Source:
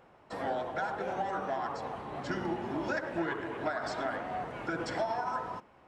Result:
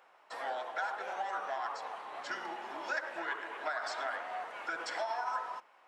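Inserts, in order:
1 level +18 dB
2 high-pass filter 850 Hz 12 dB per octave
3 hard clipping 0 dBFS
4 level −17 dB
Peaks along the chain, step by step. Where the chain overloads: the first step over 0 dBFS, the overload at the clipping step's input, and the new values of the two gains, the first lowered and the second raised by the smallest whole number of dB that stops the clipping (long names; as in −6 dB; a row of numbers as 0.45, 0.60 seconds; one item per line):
−0.5, −4.5, −4.5, −21.5 dBFS
no step passes full scale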